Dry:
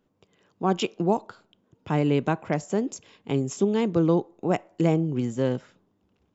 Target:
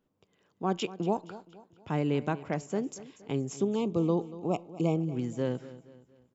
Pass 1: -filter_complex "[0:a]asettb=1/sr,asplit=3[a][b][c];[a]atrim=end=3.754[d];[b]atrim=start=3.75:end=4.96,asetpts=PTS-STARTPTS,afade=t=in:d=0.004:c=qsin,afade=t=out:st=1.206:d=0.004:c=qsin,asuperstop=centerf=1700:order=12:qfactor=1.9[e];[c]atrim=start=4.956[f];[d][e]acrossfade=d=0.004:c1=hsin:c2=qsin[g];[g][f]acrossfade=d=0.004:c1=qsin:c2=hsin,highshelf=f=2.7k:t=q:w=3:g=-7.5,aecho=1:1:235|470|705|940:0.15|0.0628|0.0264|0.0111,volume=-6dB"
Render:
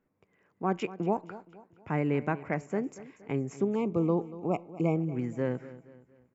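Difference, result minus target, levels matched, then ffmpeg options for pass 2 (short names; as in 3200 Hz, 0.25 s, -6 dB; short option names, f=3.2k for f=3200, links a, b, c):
4000 Hz band -9.5 dB
-filter_complex "[0:a]asettb=1/sr,asplit=3[a][b][c];[a]atrim=end=3.754[d];[b]atrim=start=3.75:end=4.96,asetpts=PTS-STARTPTS,afade=t=in:d=0.004:c=qsin,afade=t=out:st=1.206:d=0.004:c=qsin,asuperstop=centerf=1700:order=12:qfactor=1.9[e];[c]atrim=start=4.956[f];[d][e]acrossfade=d=0.004:c1=hsin:c2=qsin[g];[g][f]acrossfade=d=0.004:c1=qsin:c2=hsin,aecho=1:1:235|470|705|940:0.15|0.0628|0.0264|0.0111,volume=-6dB"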